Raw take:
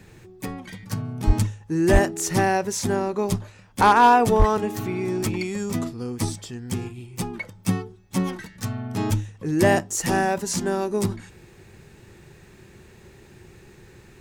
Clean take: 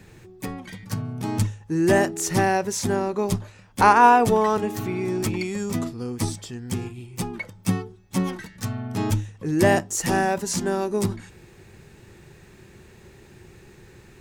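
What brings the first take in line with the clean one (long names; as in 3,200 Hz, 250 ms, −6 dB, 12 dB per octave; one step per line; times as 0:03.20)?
clipped peaks rebuilt −8 dBFS
high-pass at the plosives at 0:01.26/0:01.92/0:04.38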